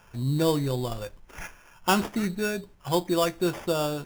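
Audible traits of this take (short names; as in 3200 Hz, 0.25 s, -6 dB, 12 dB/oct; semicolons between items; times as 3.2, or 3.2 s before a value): aliases and images of a low sample rate 4100 Hz, jitter 0%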